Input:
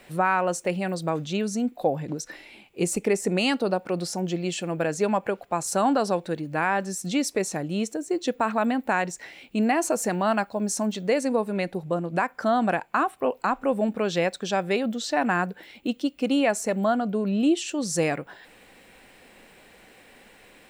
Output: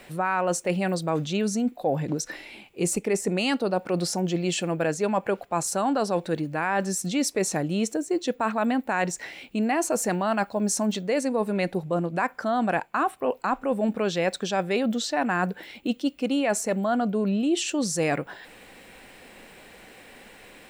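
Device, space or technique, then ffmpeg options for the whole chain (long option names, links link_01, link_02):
compression on the reversed sound: -af "areverse,acompressor=threshold=-25dB:ratio=6,areverse,volume=4dB"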